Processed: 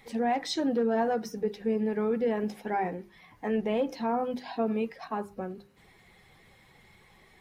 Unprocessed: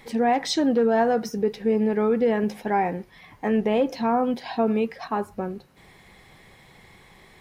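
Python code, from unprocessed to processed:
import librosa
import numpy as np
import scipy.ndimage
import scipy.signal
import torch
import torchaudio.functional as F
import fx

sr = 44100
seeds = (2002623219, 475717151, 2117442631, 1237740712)

y = fx.spec_quant(x, sr, step_db=15)
y = fx.hum_notches(y, sr, base_hz=50, count=8)
y = y * librosa.db_to_amplitude(-6.0)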